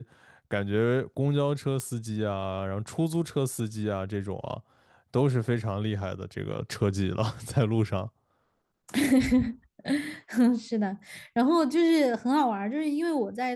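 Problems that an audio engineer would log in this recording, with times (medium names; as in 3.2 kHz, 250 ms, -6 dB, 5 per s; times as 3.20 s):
1.80 s: pop -18 dBFS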